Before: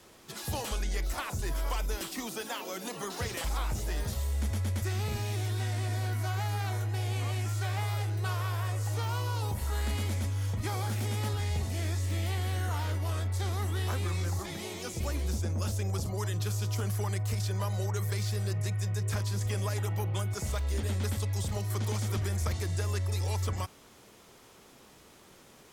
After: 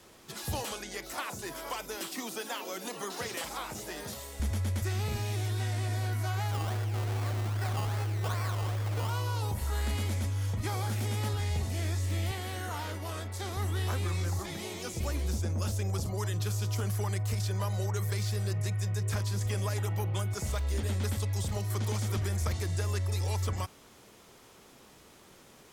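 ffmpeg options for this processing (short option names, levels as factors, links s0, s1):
-filter_complex "[0:a]asettb=1/sr,asplit=3[s0][s1][s2];[s0]atrim=end=0.634[s3];[s1]atrim=start=0.63:end=4.4,asetpts=PTS-STARTPTS,afade=t=in:d=0.004:c=qsin,afade=t=out:st=3.766:d=0.004:c=qsin,highpass=200[s4];[s2]atrim=start=4.396[s5];[s3][s4]acrossfade=d=0.004:c1=hsin:c2=qsin[s6];[s6][s5]acrossfade=d=0.004:c1=qsin:c2=hsin,asettb=1/sr,asplit=3[s7][s8][s9];[s7]atrim=end=6.514[s10];[s8]atrim=start=6.51:end=9.1,asetpts=PTS-STARTPTS,afade=t=in:d=0.004:c=qsin,afade=t=out:st=2.586:d=0.004:c=qsin,acrusher=samples=18:mix=1:aa=0.000001:lfo=1:lforange=10.8:lforate=2.5[s11];[s9]atrim=start=9.096[s12];[s10][s11]acrossfade=d=0.004:c1=hsin:c2=qsin[s13];[s13][s12]acrossfade=d=0.004:c1=qsin:c2=hsin,asettb=1/sr,asplit=3[s14][s15][s16];[s14]atrim=end=12.314[s17];[s15]atrim=start=12.31:end=13.57,asetpts=PTS-STARTPTS,afade=t=in:d=0.004:c=qsin,afade=t=out:st=1.256:d=0.004:c=qsin,highpass=140[s18];[s16]atrim=start=13.566[s19];[s17][s18]acrossfade=d=0.004:c1=hsin:c2=qsin[s20];[s20][s19]acrossfade=d=0.004:c1=qsin:c2=hsin"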